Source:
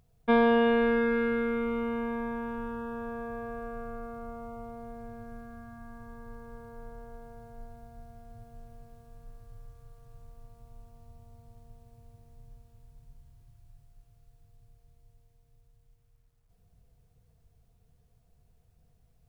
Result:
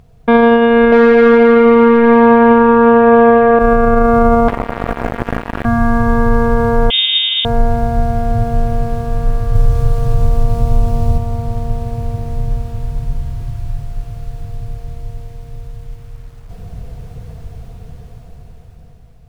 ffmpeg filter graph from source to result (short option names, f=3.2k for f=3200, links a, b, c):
-filter_complex "[0:a]asettb=1/sr,asplit=3[a][b][c];[a]atrim=end=0.924[d];[b]atrim=start=0.92:end=3.59,asetpts=PTS-STARTPTS,afade=t=in:d=0.004:c=qsin,afade=t=out:st=2.666:d=0.004:c=qsin,equalizer=f=270:w=0.37:g=5.5,asplit=2[e][f];[f]highpass=f=720:p=1,volume=22dB,asoftclip=type=tanh:threshold=-13dB[g];[e][g]amix=inputs=2:normalize=0,lowpass=f=1.2k:p=1,volume=-6dB[h];[c]atrim=start=3.586[i];[d][h]acrossfade=d=0.004:c1=hsin:c2=qsin[j];[j][i]acrossfade=d=0.004:c1=qsin:c2=hsin,asettb=1/sr,asplit=3[k][l][m];[k]atrim=end=4.484[n];[l]atrim=start=4.48:end=5.65,asetpts=PTS-STARTPTS,afade=t=in:d=0.004:c=qsin,afade=t=out:st=1.166:d=0.004:c=qsin,acrossover=split=120|920[o][p][q];[o]acompressor=threshold=-49dB:ratio=4[r];[p]acompressor=threshold=-54dB:ratio=4[s];[q]acompressor=threshold=-58dB:ratio=4[t];[r][s][t]amix=inputs=3:normalize=0,acrusher=bits=6:mix=0:aa=0.5[u];[m]atrim=start=5.646[v];[n][u]acrossfade=d=0.004:c1=hsin:c2=qsin[w];[w][v]acrossfade=d=0.004:c1=qsin:c2=hsin,asettb=1/sr,asplit=3[x][y][z];[x]atrim=end=6.904[aa];[y]atrim=start=6.9:end=7.45,asetpts=PTS-STARTPTS,afade=t=in:d=0.004:c=qsin,afade=t=out:st=0.546:d=0.004:c=qsin,lowpass=f=3.1k:t=q:w=0.5098,lowpass=f=3.1k:t=q:w=0.6013,lowpass=f=3.1k:t=q:w=0.9,lowpass=f=3.1k:t=q:w=2.563,afreqshift=-3700,lowshelf=f=280:g=-8[ab];[z]atrim=start=7.446[ac];[aa][ab]acrossfade=d=0.004:c1=hsin:c2=qsin[ad];[ad][ac]acrossfade=d=0.004:c1=qsin:c2=hsin,asettb=1/sr,asplit=3[ae][af][ag];[ae]atrim=end=9.554[ah];[af]atrim=start=9.55:end=11.18,asetpts=PTS-STARTPTS,afade=t=in:d=0.004:c=qsin,afade=t=out:st=1.626:d=0.004:c=qsin,acontrast=28,equalizer=f=1.4k:t=o:w=2:g=-5[ai];[ag]atrim=start=11.176[aj];[ah][ai]acrossfade=d=0.004:c1=hsin:c2=qsin[ak];[ak][aj]acrossfade=d=0.004:c1=qsin:c2=hsin,lowpass=f=2.9k:p=1,dynaudnorm=f=500:g=7:m=14dB,alimiter=level_in=21.5dB:limit=-1dB:release=50:level=0:latency=1,volume=-1dB"